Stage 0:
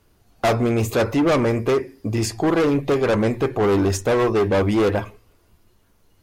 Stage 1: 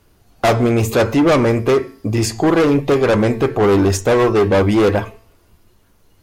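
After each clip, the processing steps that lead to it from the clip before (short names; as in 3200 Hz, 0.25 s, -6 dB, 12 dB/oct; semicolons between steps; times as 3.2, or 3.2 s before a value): de-hum 223.1 Hz, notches 38; gain +5 dB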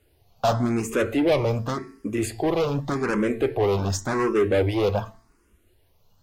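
endless phaser +0.88 Hz; gain -5.5 dB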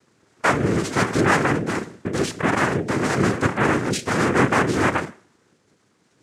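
in parallel at -1.5 dB: limiter -21.5 dBFS, peak gain reduction 10 dB; on the sum: noise vocoder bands 3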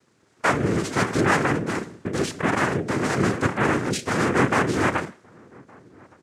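outdoor echo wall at 200 m, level -26 dB; gain -2 dB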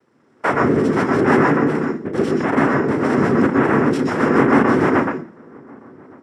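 reverb RT60 0.20 s, pre-delay 0.12 s, DRR 0.5 dB; gain -8.5 dB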